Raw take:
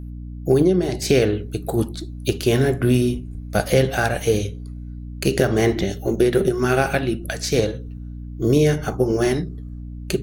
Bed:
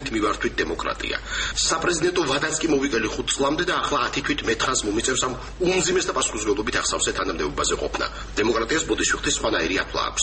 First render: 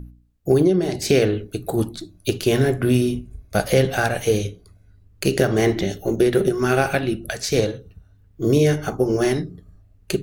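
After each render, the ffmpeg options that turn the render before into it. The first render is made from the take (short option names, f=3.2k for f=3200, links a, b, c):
-af "bandreject=f=60:t=h:w=4,bandreject=f=120:t=h:w=4,bandreject=f=180:t=h:w=4,bandreject=f=240:t=h:w=4,bandreject=f=300:t=h:w=4"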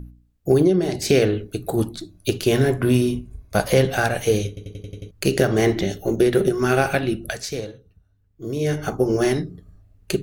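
-filter_complex "[0:a]asettb=1/sr,asplit=3[a][b][c];[a]atrim=end=2.704[d];[b]atrim=start=2.7:end=3.84,asetpts=PTS-STARTPTS,afade=t=in:d=0.004:c=qsin,afade=t=out:st=1.136:d=0.004:c=qsin,equalizer=f=1k:w=5.6:g=8.5[e];[c]atrim=start=3.836[f];[d][e]acrossfade=d=0.004:c1=hsin:c2=qsin[g];[g][f]acrossfade=d=0.004:c1=qsin:c2=hsin,asplit=10[h][i][j][k][l][m][n][o][p][q];[h]atrim=end=4.572[r];[i]atrim=start=4.478:end=4.572[s];[j]atrim=start=4.478:end=4.572[t];[k]atrim=start=4.478:end=4.572[u];[l]atrim=start=4.478:end=4.572[v];[m]atrim=start=4.478:end=4.572[w];[n]atrim=start=4.478:end=4.572[x];[o]atrim=start=5.108:end=7.58,asetpts=PTS-STARTPTS,afade=t=out:st=2.192:d=0.28:silence=0.298538[y];[p]atrim=start=7.58:end=8.56,asetpts=PTS-STARTPTS,volume=-10.5dB[z];[q]atrim=start=8.56,asetpts=PTS-STARTPTS,afade=t=in:d=0.28:silence=0.298538[aa];[r][s]acrossfade=d=0.004:c1=hsin:c2=hsin[ab];[ab][t]acrossfade=d=0.004:c1=hsin:c2=hsin[ac];[ac][u]acrossfade=d=0.004:c1=hsin:c2=hsin[ad];[ad][v]acrossfade=d=0.004:c1=hsin:c2=hsin[ae];[ae][w]acrossfade=d=0.004:c1=hsin:c2=hsin[af];[af][x]acrossfade=d=0.004:c1=hsin:c2=hsin[ag];[y][z][aa]concat=n=3:v=0:a=1[ah];[ag][ah]acrossfade=d=0.004:c1=hsin:c2=hsin"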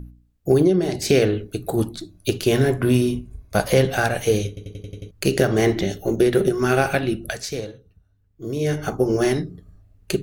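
-af anull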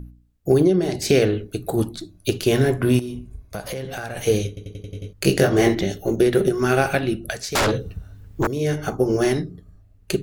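-filter_complex "[0:a]asettb=1/sr,asplit=3[a][b][c];[a]atrim=end=2.994[d];[b]atrim=start=2.99:end=4.17,asetpts=PTS-STARTPTS,afade=t=in:d=0.004:c=qsin,afade=t=out:st=1.176:d=0.004:c=qsin,acompressor=threshold=-27dB:ratio=6:attack=3.2:release=140:knee=1:detection=peak[e];[c]atrim=start=4.166[f];[d][e]acrossfade=d=0.004:c1=hsin:c2=qsin[g];[g][f]acrossfade=d=0.004:c1=qsin:c2=hsin,asettb=1/sr,asplit=3[h][i][j];[h]atrim=end=4.904[k];[i]atrim=start=4.9:end=5.75,asetpts=PTS-STARTPTS,afade=t=in:d=0.004:c=qsin,afade=t=out:st=0.846:d=0.004:c=qsin,asplit=2[l][m];[m]adelay=21,volume=-3dB[n];[l][n]amix=inputs=2:normalize=0,atrim=end_sample=37485[o];[j]atrim=start=5.746[p];[k][o]acrossfade=d=0.004:c1=hsin:c2=qsin[q];[q][p]acrossfade=d=0.004:c1=qsin:c2=hsin,asettb=1/sr,asplit=3[r][s][t];[r]atrim=end=7.554[u];[s]atrim=start=7.55:end=8.47,asetpts=PTS-STARTPTS,afade=t=in:d=0.004:c=qsin,afade=t=out:st=0.916:d=0.004:c=qsin,aeval=exprs='0.168*sin(PI/2*7.94*val(0)/0.168)':c=same[v];[t]atrim=start=8.466[w];[u][v]acrossfade=d=0.004:c1=hsin:c2=qsin[x];[x][w]acrossfade=d=0.004:c1=qsin:c2=hsin"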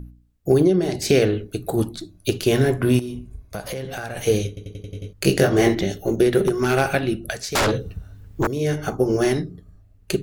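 -filter_complex "[0:a]asettb=1/sr,asplit=3[a][b][c];[a]atrim=end=6.444[d];[b]atrim=start=6.44:end=6.94,asetpts=PTS-STARTPTS,afade=t=in:d=0.004:c=qsin,afade=t=out:st=0.496:d=0.004:c=qsin,aeval=exprs='0.299*(abs(mod(val(0)/0.299+3,4)-2)-1)':c=same[e];[c]atrim=start=6.936[f];[d][e]acrossfade=d=0.004:c1=hsin:c2=qsin[g];[g][f]acrossfade=d=0.004:c1=qsin:c2=hsin"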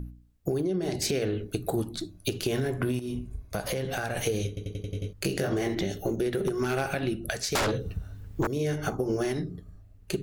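-af "alimiter=limit=-12dB:level=0:latency=1:release=108,acompressor=threshold=-25dB:ratio=6"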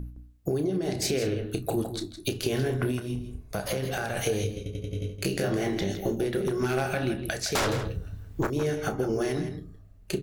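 -filter_complex "[0:a]asplit=2[a][b];[b]adelay=31,volume=-11dB[c];[a][c]amix=inputs=2:normalize=0,asplit=2[d][e];[e]adelay=163.3,volume=-9dB,highshelf=f=4k:g=-3.67[f];[d][f]amix=inputs=2:normalize=0"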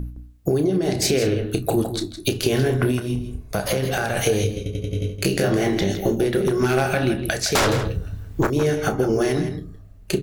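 -af "volume=7.5dB"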